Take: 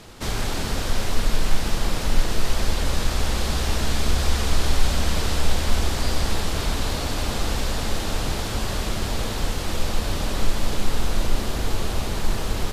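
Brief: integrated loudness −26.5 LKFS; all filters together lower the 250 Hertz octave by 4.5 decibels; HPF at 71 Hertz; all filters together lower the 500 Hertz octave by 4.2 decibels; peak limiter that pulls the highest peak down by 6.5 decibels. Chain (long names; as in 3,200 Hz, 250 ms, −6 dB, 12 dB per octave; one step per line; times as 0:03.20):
high-pass filter 71 Hz
parametric band 250 Hz −5 dB
parametric band 500 Hz −4 dB
level +4 dB
brickwall limiter −17 dBFS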